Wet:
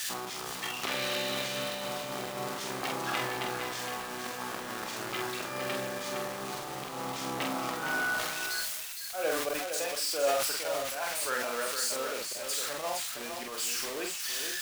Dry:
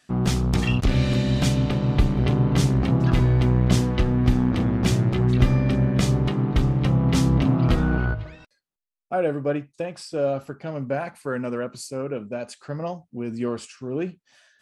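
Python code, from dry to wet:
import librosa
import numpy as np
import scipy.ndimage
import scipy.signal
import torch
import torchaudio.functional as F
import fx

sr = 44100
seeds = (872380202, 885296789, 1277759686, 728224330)

y = x + 0.5 * 10.0 ** (-22.0 / 20.0) * np.diff(np.sign(x), prepend=np.sign(x[:1]))
y = scipy.signal.sosfilt(scipy.signal.butter(2, 810.0, 'highpass', fs=sr, output='sos'), y)
y = fx.high_shelf(y, sr, hz=7800.0, db=-11.5)
y = fx.auto_swell(y, sr, attack_ms=153.0)
y = fx.quant_dither(y, sr, seeds[0], bits=8, dither='none')
y = fx.doubler(y, sr, ms=46.0, db=-4)
y = y + 10.0 ** (-7.0 / 20.0) * np.pad(y, (int(462 * sr / 1000.0), 0))[:len(y)]
y = fx.sustainer(y, sr, db_per_s=30.0)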